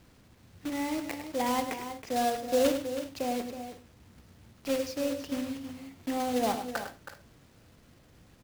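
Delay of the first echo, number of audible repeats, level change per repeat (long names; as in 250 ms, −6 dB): 103 ms, 3, repeats not evenly spaced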